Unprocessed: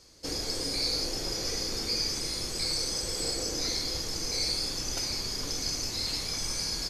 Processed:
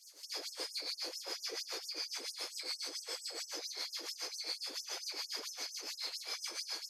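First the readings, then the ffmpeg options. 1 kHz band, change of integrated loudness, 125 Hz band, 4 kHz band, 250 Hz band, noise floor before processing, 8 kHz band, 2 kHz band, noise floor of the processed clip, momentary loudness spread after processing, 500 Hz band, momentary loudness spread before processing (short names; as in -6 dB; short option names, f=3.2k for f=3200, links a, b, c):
-8.0 dB, -10.0 dB, under -40 dB, -9.5 dB, -18.5 dB, -35 dBFS, -11.5 dB, -6.5 dB, -55 dBFS, 2 LU, -12.0 dB, 3 LU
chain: -filter_complex "[0:a]bass=f=250:g=-11,treble=f=4k:g=-5,alimiter=level_in=5dB:limit=-24dB:level=0:latency=1:release=201,volume=-5dB,aemphasis=mode=production:type=50fm,acrossover=split=4200[a][b];[b]acompressor=threshold=-50dB:ratio=4:attack=1:release=60[c];[a][c]amix=inputs=2:normalize=0,acrossover=split=520[d][e];[d]aeval=exprs='val(0)*(1-0.7/2+0.7/2*cos(2*PI*7.2*n/s))':c=same[f];[e]aeval=exprs='val(0)*(1-0.7/2-0.7/2*cos(2*PI*7.2*n/s))':c=same[g];[f][g]amix=inputs=2:normalize=0,afftfilt=real='re*gte(b*sr/1024,250*pow(5400/250,0.5+0.5*sin(2*PI*4.4*pts/sr)))':imag='im*gte(b*sr/1024,250*pow(5400/250,0.5+0.5*sin(2*PI*4.4*pts/sr)))':win_size=1024:overlap=0.75,volume=2.5dB"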